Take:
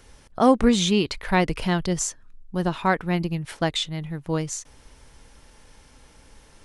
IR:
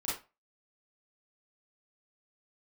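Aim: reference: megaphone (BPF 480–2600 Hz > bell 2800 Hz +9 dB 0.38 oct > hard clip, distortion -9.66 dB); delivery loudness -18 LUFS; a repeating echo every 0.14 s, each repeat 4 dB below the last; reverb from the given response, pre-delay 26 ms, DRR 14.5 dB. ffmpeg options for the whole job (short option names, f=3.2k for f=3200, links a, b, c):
-filter_complex "[0:a]aecho=1:1:140|280|420|560|700|840|980|1120|1260:0.631|0.398|0.25|0.158|0.0994|0.0626|0.0394|0.0249|0.0157,asplit=2[a][b];[1:a]atrim=start_sample=2205,adelay=26[c];[b][c]afir=irnorm=-1:irlink=0,volume=-18dB[d];[a][d]amix=inputs=2:normalize=0,highpass=480,lowpass=2.6k,equalizer=f=2.8k:t=o:w=0.38:g=9,asoftclip=type=hard:threshold=-19dB,volume=9.5dB"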